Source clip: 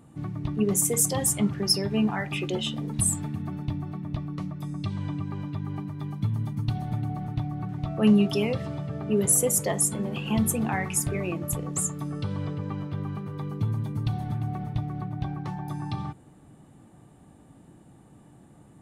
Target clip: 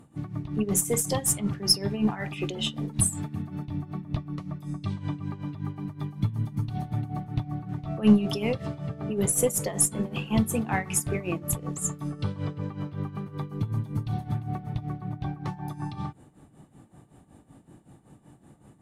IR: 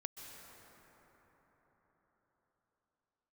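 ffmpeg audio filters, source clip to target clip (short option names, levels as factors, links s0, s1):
-filter_complex "[0:a]tremolo=f=5.3:d=0.77,aeval=exprs='0.316*(cos(1*acos(clip(val(0)/0.316,-1,1)))-cos(1*PI/2))+0.00794*(cos(6*acos(clip(val(0)/0.316,-1,1)))-cos(6*PI/2))':c=same[s0];[1:a]atrim=start_sample=2205,atrim=end_sample=3528,asetrate=29988,aresample=44100[s1];[s0][s1]afir=irnorm=-1:irlink=0,volume=1.78"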